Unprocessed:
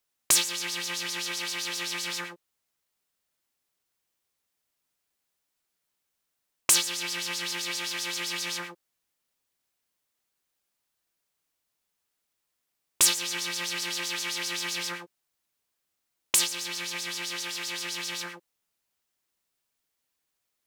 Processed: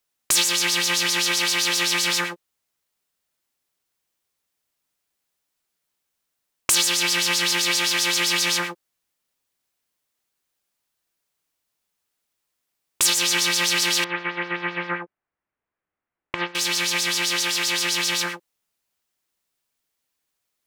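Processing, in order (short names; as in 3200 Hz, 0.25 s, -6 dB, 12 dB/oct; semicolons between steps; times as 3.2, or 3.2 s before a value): 14.04–16.55 LPF 2100 Hz 24 dB/oct; gate -41 dBFS, range -9 dB; maximiser +17.5 dB; gain -6.5 dB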